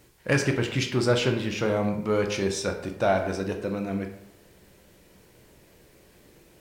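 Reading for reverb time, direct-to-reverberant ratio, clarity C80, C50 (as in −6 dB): 0.80 s, 4.0 dB, 10.5 dB, 8.5 dB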